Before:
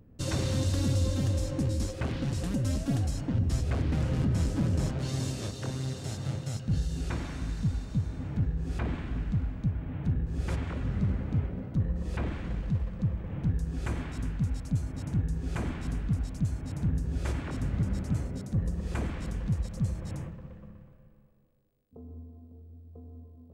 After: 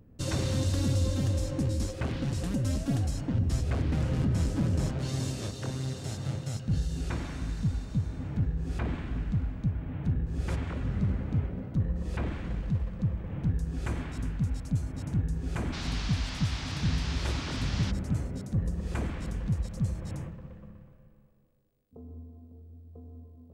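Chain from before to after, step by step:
0:15.72–0:17.90: noise in a band 620–5,400 Hz −41 dBFS

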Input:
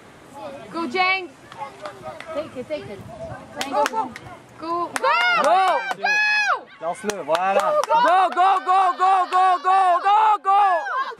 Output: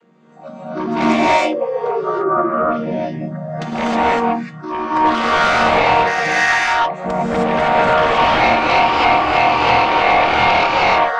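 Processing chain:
channel vocoder with a chord as carrier minor triad, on D#3
noise reduction from a noise print of the clip's start 13 dB
sine wavefolder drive 12 dB, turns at −4.5 dBFS
0:00.87–0:02.29: sound drawn into the spectrogram fall 330–710 Hz −15 dBFS
0:01.91–0:02.53: low-pass with resonance 1,200 Hz, resonance Q 12
reverb whose tail is shaped and stops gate 340 ms rising, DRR −7.5 dB
level −13.5 dB

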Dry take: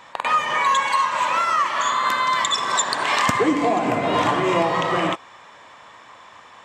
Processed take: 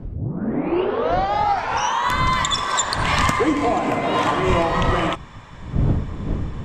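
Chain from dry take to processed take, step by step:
turntable start at the beginning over 2.17 s
wind on the microphone 140 Hz −27 dBFS

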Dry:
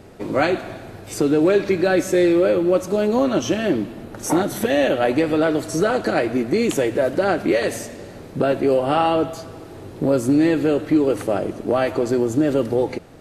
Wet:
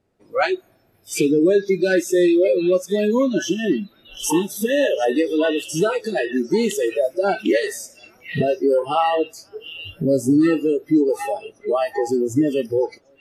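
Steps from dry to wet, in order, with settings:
camcorder AGC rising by 6.2 dB per second
echo through a band-pass that steps 746 ms, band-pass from 2,800 Hz, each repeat −0.7 octaves, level −0.5 dB
noise reduction from a noise print of the clip's start 27 dB
level +1 dB

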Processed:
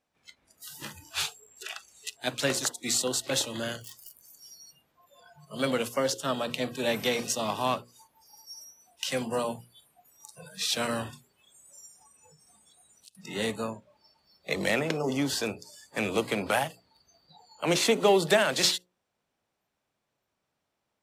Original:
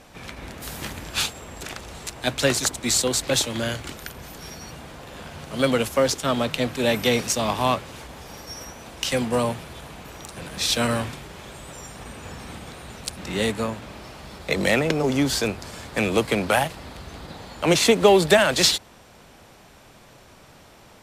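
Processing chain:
0:03.81–0:04.33: wrap-around overflow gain 29.5 dB
noise reduction from a noise print of the clip's start 25 dB
0:01.51–0:02.11: parametric band 2,700 Hz +8 dB 1.1 octaves
0:12.02–0:13.15: downward compressor 4 to 1, threshold −49 dBFS, peak gain reduction 20.5 dB
low-shelf EQ 63 Hz −12 dB
mains-hum notches 60/120/180/240/300/360/420/480/540 Hz
level −6 dB

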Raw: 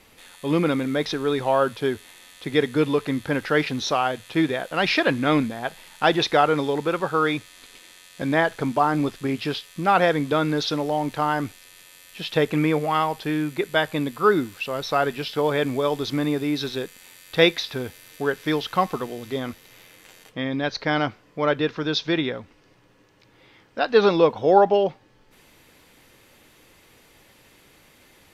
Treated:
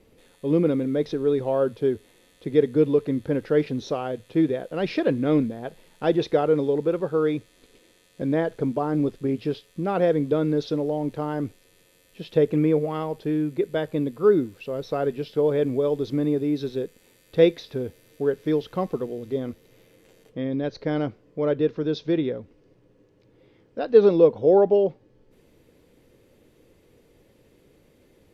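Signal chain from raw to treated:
drawn EQ curve 280 Hz 0 dB, 480 Hz +3 dB, 780 Hz −10 dB, 1,300 Hz −13 dB

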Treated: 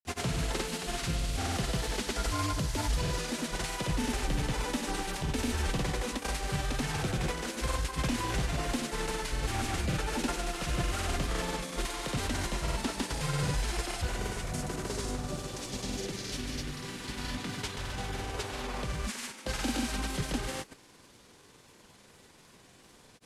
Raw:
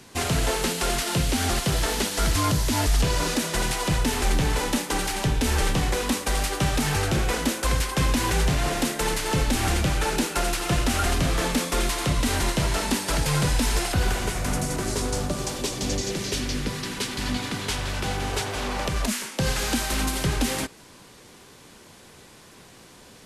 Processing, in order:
variable-slope delta modulation 64 kbit/s
granular cloud, pitch spread up and down by 0 semitones
level −7 dB

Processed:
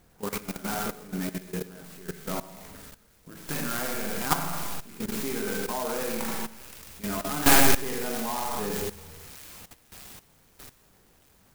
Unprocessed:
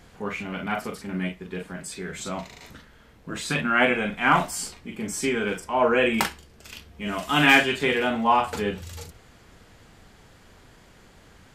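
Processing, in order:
stylus tracing distortion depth 0.32 ms
delay with a high-pass on its return 622 ms, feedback 62%, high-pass 5,100 Hz, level −7 dB
on a send at −2 dB: convolution reverb RT60 0.85 s, pre-delay 71 ms
on the sum: output level in coarse steps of 15 dB
converter with an unsteady clock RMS 0.091 ms

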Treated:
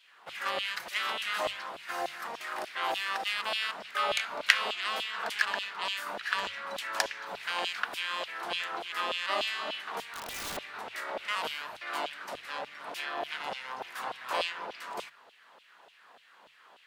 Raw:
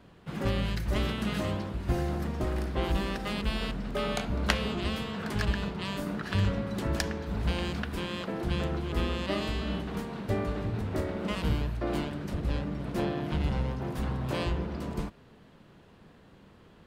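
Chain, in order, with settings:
auto-filter high-pass saw down 3.4 Hz 630–3,200 Hz
mains-hum notches 50/100/150 Hz
0:10.03–0:10.57: wrap-around overflow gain 34.5 dB
level +2 dB

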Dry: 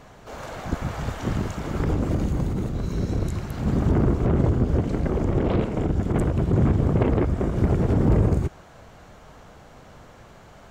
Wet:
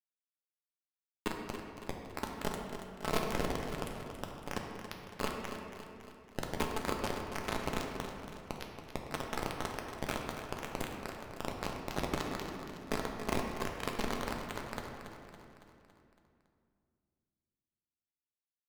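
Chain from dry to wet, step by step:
octave-band graphic EQ 250/500/1,000/2,000/4,000 Hz +6/+7/−7/+7/−7 dB
downward compressor 8 to 1, threshold −21 dBFS, peak gain reduction 11 dB
square-wave tremolo 7.5 Hz, depth 65%, duty 60%
resonators tuned to a chord G2 sus4, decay 0.6 s
time stretch by overlap-add 1.9×, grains 21 ms
bit reduction 6 bits
granular cloud, spray 27 ms, pitch spread up and down by 0 semitones
repeating echo 304 ms, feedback 55%, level −10 dB
on a send at −1.5 dB: convolution reverb RT60 2.3 s, pre-delay 4 ms
on the sum: wrong playback speed 44.1 kHz file played as 48 kHz
level +10 dB

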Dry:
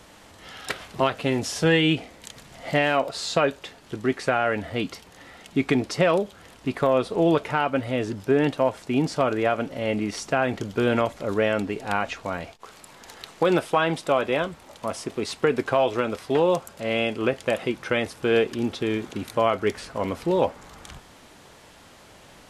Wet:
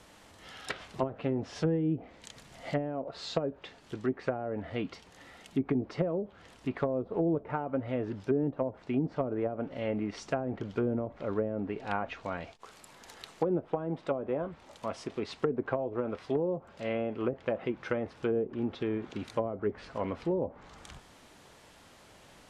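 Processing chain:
treble cut that deepens with the level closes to 430 Hz, closed at −17.5 dBFS
level −6.5 dB

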